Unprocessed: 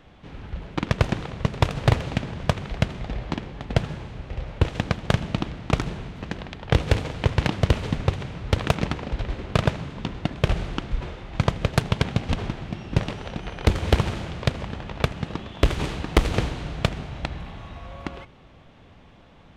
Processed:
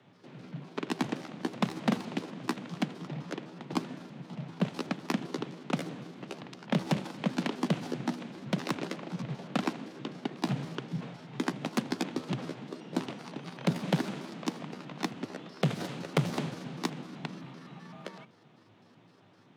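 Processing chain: pitch shift switched off and on +7 st, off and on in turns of 128 ms; frequency shift +100 Hz; trim -9 dB

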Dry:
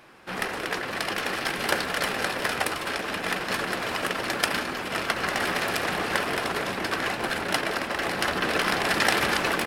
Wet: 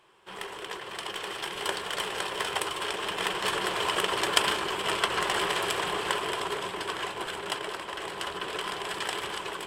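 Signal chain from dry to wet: Doppler pass-by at 4.36 s, 7 m/s, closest 9.9 m; graphic EQ with 31 bands 250 Hz -11 dB, 400 Hz +10 dB, 1 kHz +10 dB, 3.15 kHz +11 dB, 8 kHz +11 dB; trim -3 dB

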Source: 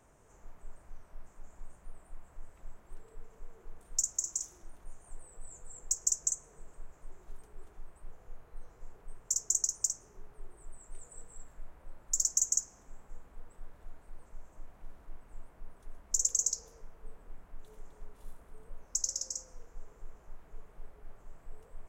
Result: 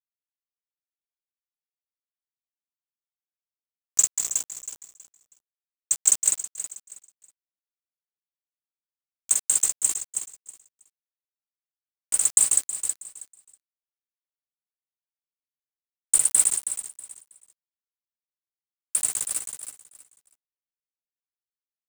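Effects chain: pitch bend over the whole clip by +5.5 st starting unshifted; treble shelf 11 kHz -4.5 dB; band-stop 2.9 kHz, Q 12; hum 60 Hz, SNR 21 dB; RIAA curve recording; bit crusher 5-bit; on a send: feedback delay 321 ms, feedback 24%, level -10 dB; on the sum: random flutter of the level, depth 65%; trim +3.5 dB

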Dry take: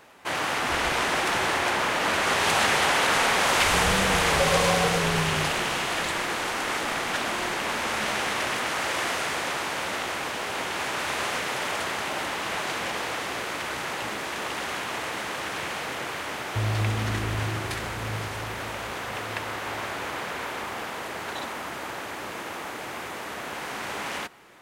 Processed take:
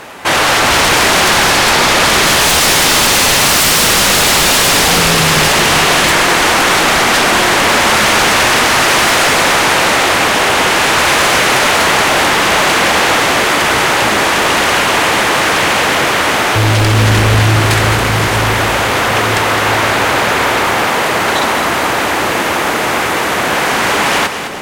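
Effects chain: 2.93–3.58 s: peaking EQ 130 Hz +14.5 dB 1.2 oct; sine folder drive 16 dB, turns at -9 dBFS; two-band feedback delay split 710 Hz, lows 388 ms, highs 210 ms, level -9 dB; trim +1.5 dB

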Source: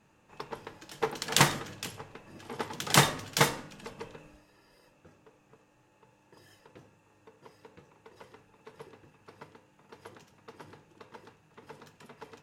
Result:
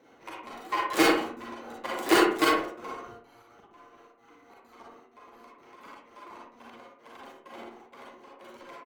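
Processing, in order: dead-time distortion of 0.054 ms; high-pass 70 Hz 12 dB/octave; tilt shelf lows +8 dB, about 840 Hz; tempo 0.6×; trance gate "xxxx.xxxx...x" 178 bpm -60 dB; bucket-brigade echo 140 ms, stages 1024, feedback 37%, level -9 dB; transient shaper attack -7 dB, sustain -2 dB; delay 134 ms -23 dB; reverberation RT60 0.70 s, pre-delay 55 ms, DRR -3 dB; speed mistake 33 rpm record played at 78 rpm; trim +1 dB

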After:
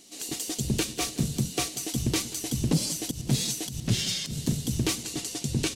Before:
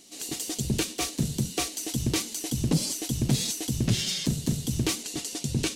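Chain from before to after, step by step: 3.03–4.43 s: slow attack 112 ms; feedback delay 185 ms, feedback 57%, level -18 dB

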